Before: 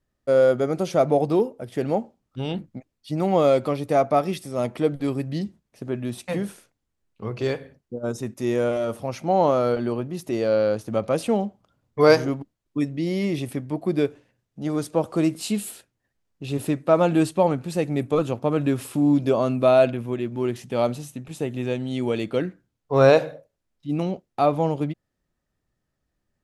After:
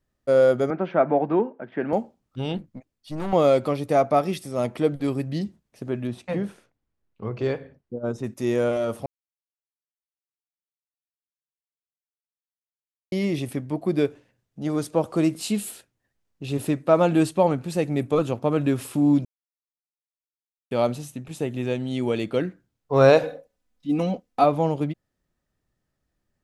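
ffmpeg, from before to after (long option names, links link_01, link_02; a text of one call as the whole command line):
ffmpeg -i in.wav -filter_complex "[0:a]asettb=1/sr,asplit=3[link_01][link_02][link_03];[link_01]atrim=end=0.704[link_04];[link_02]atrim=start=0.7:end=1.93,asetpts=PTS-STARTPTS,afade=type=in:duration=0.004:curve=qsin,afade=type=out:start_time=1.226:duration=0.004:curve=qsin,highpass=frequency=170:width=0.5412,highpass=frequency=170:width=1.3066,equalizer=frequency=480:width_type=q:width=4:gain=-5,equalizer=frequency=940:width_type=q:width=4:gain=4,equalizer=frequency=1600:width_type=q:width=4:gain=9,lowpass=frequency=2500:width=0.5412,lowpass=frequency=2500:width=1.3066[link_05];[link_03]atrim=start=1.926[link_06];[link_04][link_05]acrossfade=duration=0.004:curve1=hsin:curve2=qsin[link_07];[link_07][link_06]acrossfade=duration=0.004:curve1=qsin:curve2=hsin,asettb=1/sr,asplit=3[link_08][link_09][link_10];[link_08]atrim=end=2.574[link_11];[link_09]atrim=start=2.57:end=3.33,asetpts=PTS-STARTPTS,afade=type=in:duration=0.004:curve=qsin,afade=type=out:start_time=0.756:duration=0.004:curve=qsin,aeval=exprs='(tanh(15.8*val(0)+0.6)-tanh(0.6))/15.8':channel_layout=same[link_12];[link_10]atrim=start=3.326[link_13];[link_11][link_12]acrossfade=duration=0.004:curve1=hsin:curve2=qsin[link_14];[link_14][link_13]acrossfade=duration=0.004:curve1=qsin:curve2=hsin,asettb=1/sr,asplit=3[link_15][link_16][link_17];[link_15]atrim=end=6.074[link_18];[link_16]atrim=start=6.07:end=8.24,asetpts=PTS-STARTPTS,afade=type=in:duration=0.004:curve=qsin,afade=type=out:start_time=2.166:duration=0.004:curve=qsin,aemphasis=mode=reproduction:type=75kf[link_19];[link_17]atrim=start=8.236[link_20];[link_18][link_19]acrossfade=duration=0.004:curve1=hsin:curve2=qsin[link_21];[link_21][link_20]acrossfade=duration=0.004:curve1=qsin:curve2=hsin,asettb=1/sr,asplit=3[link_22][link_23][link_24];[link_22]atrim=end=23.234[link_25];[link_23]atrim=start=23.23:end=24.44,asetpts=PTS-STARTPTS,afade=type=in:duration=0.004:curve=qsin,afade=type=out:start_time=1.206:duration=0.004:curve=qsin,aecho=1:1:4:0.82,atrim=end_sample=53361[link_26];[link_24]atrim=start=24.436[link_27];[link_25][link_26]acrossfade=duration=0.004:curve1=hsin:curve2=qsin[link_28];[link_28][link_27]acrossfade=duration=0.004:curve1=qsin:curve2=hsin,asplit=5[link_29][link_30][link_31][link_32][link_33];[link_29]atrim=end=9.06,asetpts=PTS-STARTPTS,afade=type=out:start_time=9.056:duration=0.004:curve=hsin[link_34];[link_30]atrim=start=9.06:end=13.12,asetpts=PTS-STARTPTS,volume=0[link_35];[link_31]atrim=start=13.12:end=19.25,asetpts=PTS-STARTPTS,afade=type=in:duration=0.004:curve=hsin,afade=type=out:start_time=6.126:duration=0.004:curve=hsin[link_36];[link_32]atrim=start=19.25:end=20.71,asetpts=PTS-STARTPTS,volume=0[link_37];[link_33]atrim=start=20.71,asetpts=PTS-STARTPTS,afade=type=in:duration=0.004:curve=hsin[link_38];[link_34][link_35][link_36][link_37][link_38]concat=n=5:v=0:a=1" out.wav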